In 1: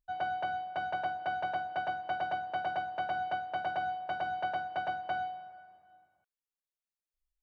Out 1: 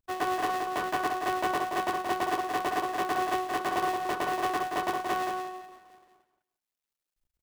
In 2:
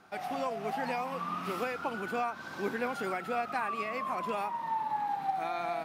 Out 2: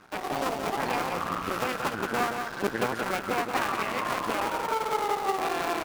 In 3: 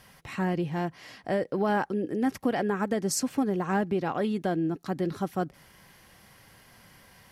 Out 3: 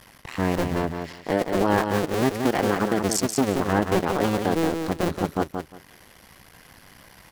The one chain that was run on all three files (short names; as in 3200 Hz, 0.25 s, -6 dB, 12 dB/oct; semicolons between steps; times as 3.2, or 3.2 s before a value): cycle switcher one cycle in 2, muted; transient shaper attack -1 dB, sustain -5 dB; feedback echo 0.176 s, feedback 19%, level -6 dB; gain +7.5 dB